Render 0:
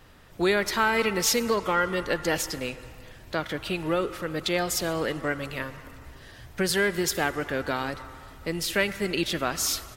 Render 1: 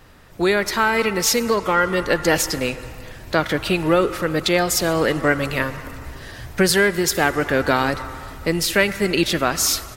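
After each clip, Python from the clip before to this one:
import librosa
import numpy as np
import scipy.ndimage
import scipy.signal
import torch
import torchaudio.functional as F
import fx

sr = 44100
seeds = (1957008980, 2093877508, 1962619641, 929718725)

y = fx.peak_eq(x, sr, hz=3200.0, db=-3.0, octaves=0.4)
y = fx.rider(y, sr, range_db=3, speed_s=0.5)
y = y * librosa.db_to_amplitude(8.0)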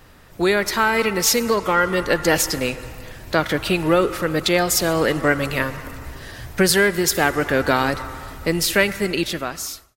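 y = fx.fade_out_tail(x, sr, length_s=1.15)
y = fx.high_shelf(y, sr, hz=9700.0, db=4.0)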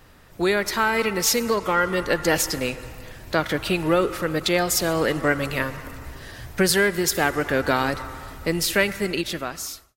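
y = fx.end_taper(x, sr, db_per_s=430.0)
y = y * librosa.db_to_amplitude(-3.0)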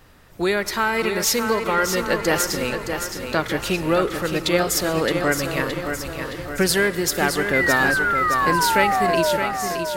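y = fx.spec_paint(x, sr, seeds[0], shape='fall', start_s=7.53, length_s=1.84, low_hz=570.0, high_hz=2100.0, level_db=-21.0)
y = fx.echo_feedback(y, sr, ms=618, feedback_pct=55, wet_db=-7.0)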